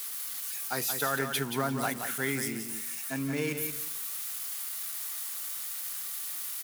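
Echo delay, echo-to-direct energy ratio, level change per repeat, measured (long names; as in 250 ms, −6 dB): 177 ms, −7.0 dB, −13.5 dB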